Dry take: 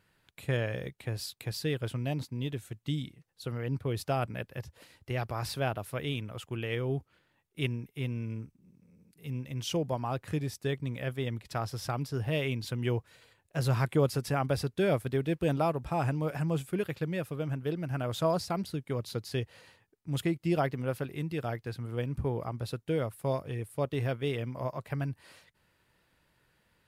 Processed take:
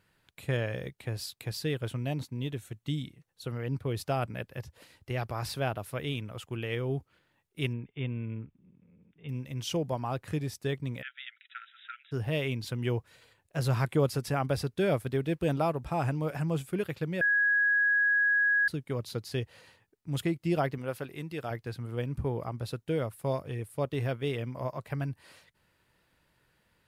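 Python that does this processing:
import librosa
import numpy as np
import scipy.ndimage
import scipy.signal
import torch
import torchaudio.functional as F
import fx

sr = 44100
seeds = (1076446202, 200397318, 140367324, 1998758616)

y = fx.notch(x, sr, hz=4900.0, q=12.0, at=(1.68, 3.53))
y = fx.brickwall_lowpass(y, sr, high_hz=3700.0, at=(7.73, 9.29))
y = fx.brickwall_bandpass(y, sr, low_hz=1300.0, high_hz=3900.0, at=(11.01, 12.11), fade=0.02)
y = fx.low_shelf(y, sr, hz=250.0, db=-7.5, at=(20.78, 21.51))
y = fx.edit(y, sr, fx.bleep(start_s=17.21, length_s=1.47, hz=1660.0, db=-22.0), tone=tone)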